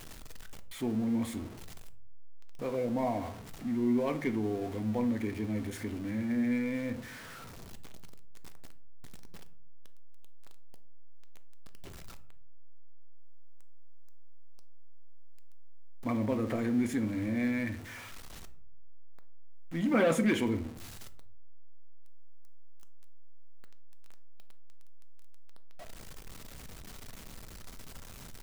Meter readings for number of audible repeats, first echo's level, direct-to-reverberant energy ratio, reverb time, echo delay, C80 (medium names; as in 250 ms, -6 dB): no echo, no echo, 10.0 dB, 0.55 s, no echo, 20.0 dB